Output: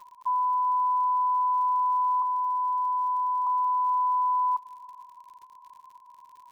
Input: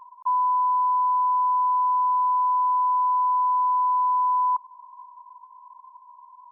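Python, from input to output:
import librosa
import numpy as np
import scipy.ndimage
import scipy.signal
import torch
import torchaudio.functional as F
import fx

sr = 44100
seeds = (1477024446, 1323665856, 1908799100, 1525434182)

y = fx.highpass(x, sr, hz=900.0, slope=12, at=(2.22, 3.47))
y = fx.dmg_crackle(y, sr, seeds[0], per_s=75.0, level_db=-42.0)
y = y + 10.0 ** (-23.0 / 20.0) * np.pad(y, (int(405 * sr / 1000.0), 0))[:len(y)]
y = F.gain(torch.from_numpy(y), -3.5).numpy()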